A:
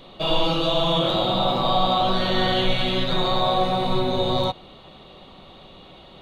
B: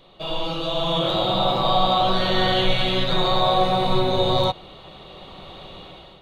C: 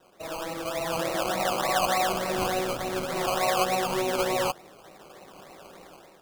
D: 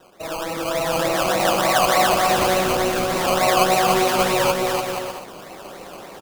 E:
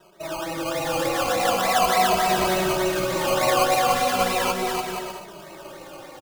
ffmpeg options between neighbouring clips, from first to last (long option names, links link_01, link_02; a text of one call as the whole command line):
ffmpeg -i in.wav -af "equalizer=frequency=240:width_type=o:width=0.36:gain=-7.5,dynaudnorm=framelen=340:gausssize=5:maxgain=15.5dB,volume=-6dB" out.wav
ffmpeg -i in.wav -filter_complex "[0:a]acrossover=split=190 2100:gain=0.0708 1 0.2[link_01][link_02][link_03];[link_01][link_02][link_03]amix=inputs=3:normalize=0,acrusher=samples=19:mix=1:aa=0.000001:lfo=1:lforange=11.4:lforate=3.4,volume=-4.5dB" out.wav
ffmpeg -i in.wav -af "areverse,acompressor=mode=upward:threshold=-41dB:ratio=2.5,areverse,aecho=1:1:290|478.5|601|680.7|732.4:0.631|0.398|0.251|0.158|0.1,volume=6.5dB" out.wav
ffmpeg -i in.wav -filter_complex "[0:a]asplit=2[link_01][link_02];[link_02]adelay=2.7,afreqshift=-0.38[link_03];[link_01][link_03]amix=inputs=2:normalize=1" out.wav